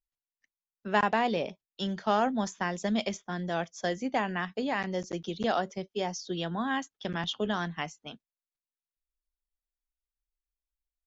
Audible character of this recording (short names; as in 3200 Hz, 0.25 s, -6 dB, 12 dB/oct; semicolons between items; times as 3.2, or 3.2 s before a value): noise floor -96 dBFS; spectral tilt -5.0 dB/oct